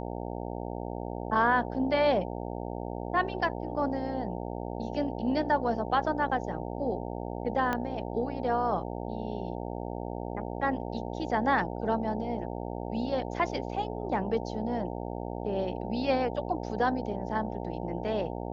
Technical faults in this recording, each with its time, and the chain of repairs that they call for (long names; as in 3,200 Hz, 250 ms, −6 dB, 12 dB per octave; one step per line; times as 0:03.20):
mains buzz 60 Hz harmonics 15 −36 dBFS
0:07.73: click −16 dBFS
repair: click removal
hum removal 60 Hz, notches 15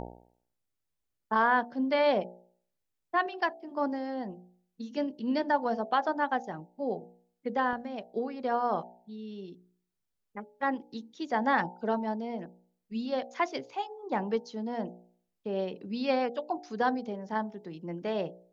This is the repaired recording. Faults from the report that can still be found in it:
0:07.73: click